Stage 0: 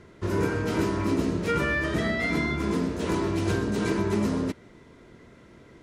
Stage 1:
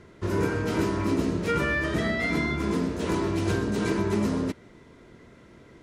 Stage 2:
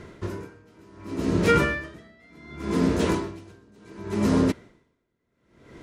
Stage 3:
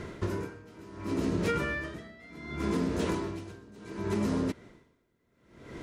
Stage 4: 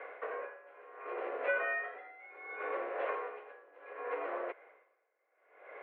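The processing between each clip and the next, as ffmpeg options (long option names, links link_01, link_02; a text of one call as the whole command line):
ffmpeg -i in.wav -af anull out.wav
ffmpeg -i in.wav -af "aeval=exprs='val(0)*pow(10,-35*(0.5-0.5*cos(2*PI*0.68*n/s))/20)':channel_layout=same,volume=7.5dB" out.wav
ffmpeg -i in.wav -af "acompressor=threshold=-30dB:ratio=6,volume=3dB" out.wav
ffmpeg -i in.wav -af "highpass=frequency=440:width_type=q:width=0.5412,highpass=frequency=440:width_type=q:width=1.307,lowpass=frequency=2300:width_type=q:width=0.5176,lowpass=frequency=2300:width_type=q:width=0.7071,lowpass=frequency=2300:width_type=q:width=1.932,afreqshift=92" out.wav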